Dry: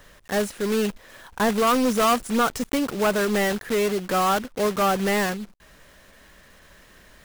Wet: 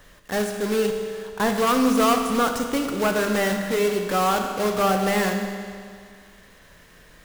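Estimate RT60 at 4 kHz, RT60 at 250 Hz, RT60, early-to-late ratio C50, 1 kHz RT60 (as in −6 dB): 2.0 s, 2.1 s, 2.1 s, 5.5 dB, 2.1 s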